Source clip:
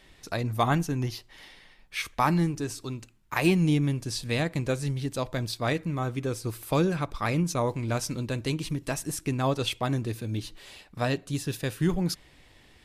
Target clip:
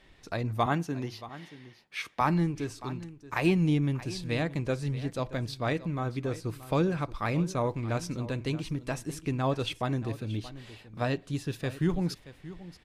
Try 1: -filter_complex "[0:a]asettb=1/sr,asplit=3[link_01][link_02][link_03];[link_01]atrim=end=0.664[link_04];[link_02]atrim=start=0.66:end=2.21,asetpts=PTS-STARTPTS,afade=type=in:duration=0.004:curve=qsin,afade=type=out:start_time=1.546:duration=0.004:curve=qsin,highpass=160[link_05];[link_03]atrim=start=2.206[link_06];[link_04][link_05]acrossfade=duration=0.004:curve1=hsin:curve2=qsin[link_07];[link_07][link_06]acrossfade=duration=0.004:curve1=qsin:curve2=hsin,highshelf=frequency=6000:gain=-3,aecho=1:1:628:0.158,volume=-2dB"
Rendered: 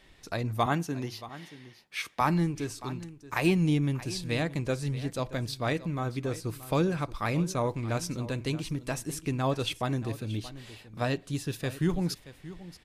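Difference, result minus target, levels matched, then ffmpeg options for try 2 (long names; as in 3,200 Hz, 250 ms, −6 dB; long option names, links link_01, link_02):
8,000 Hz band +5.0 dB
-filter_complex "[0:a]asettb=1/sr,asplit=3[link_01][link_02][link_03];[link_01]atrim=end=0.664[link_04];[link_02]atrim=start=0.66:end=2.21,asetpts=PTS-STARTPTS,afade=type=in:duration=0.004:curve=qsin,afade=type=out:start_time=1.546:duration=0.004:curve=qsin,highpass=160[link_05];[link_03]atrim=start=2.206[link_06];[link_04][link_05]acrossfade=duration=0.004:curve1=hsin:curve2=qsin[link_07];[link_07][link_06]acrossfade=duration=0.004:curve1=qsin:curve2=hsin,highshelf=frequency=6000:gain=-12,aecho=1:1:628:0.158,volume=-2dB"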